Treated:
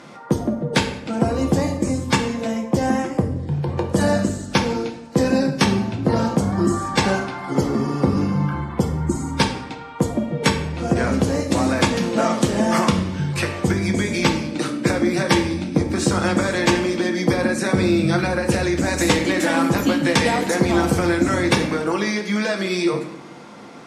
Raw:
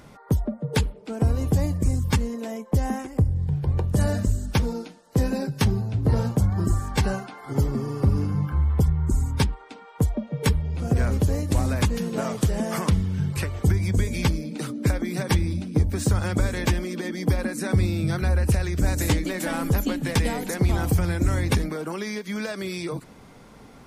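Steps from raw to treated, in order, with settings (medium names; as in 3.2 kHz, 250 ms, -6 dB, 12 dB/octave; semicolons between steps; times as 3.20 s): band-pass 220–7200 Hz; band-stop 440 Hz, Q 13; reverberation RT60 0.80 s, pre-delay 4 ms, DRR 2.5 dB; trim +8 dB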